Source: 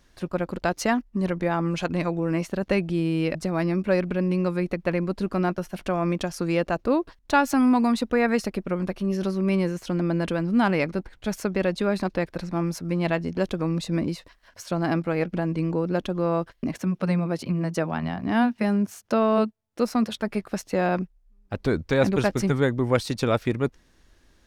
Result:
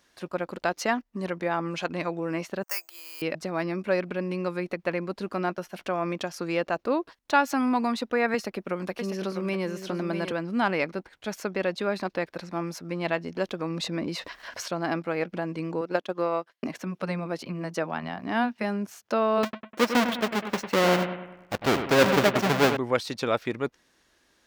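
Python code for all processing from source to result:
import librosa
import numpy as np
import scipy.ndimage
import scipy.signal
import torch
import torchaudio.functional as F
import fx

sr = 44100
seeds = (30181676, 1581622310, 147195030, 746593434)

y = fx.chain(x, sr, fx.env_lowpass(base_hz=1200.0, full_db=-21.0),
    fx.ladder_highpass(hz=800.0, resonance_pct=30),
    fx.resample_bad(factor=6, down='filtered', up='zero_stuff'), at=(2.63, 3.22))
y = fx.chain(y, sr, fx.high_shelf(hz=11000.0, db=4.5),
    fx.echo_single(ms=648, db=-8.5),
    fx.band_squash(depth_pct=40), at=(8.34, 10.32))
y = fx.chain(y, sr, fx.high_shelf(hz=8000.0, db=-5.5),
    fx.env_flatten(amount_pct=50), at=(13.7, 14.68))
y = fx.chain(y, sr, fx.highpass(hz=310.0, slope=6),
    fx.transient(attack_db=8, sustain_db=-10), at=(15.81, 16.68))
y = fx.chain(y, sr, fx.halfwave_hold(),
    fx.high_shelf(hz=7300.0, db=-6.5),
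    fx.echo_bbd(ms=100, stages=2048, feedback_pct=48, wet_db=-8.5), at=(19.43, 22.77))
y = fx.highpass(y, sr, hz=460.0, slope=6)
y = fx.dynamic_eq(y, sr, hz=9700.0, q=1.0, threshold_db=-56.0, ratio=4.0, max_db=-7)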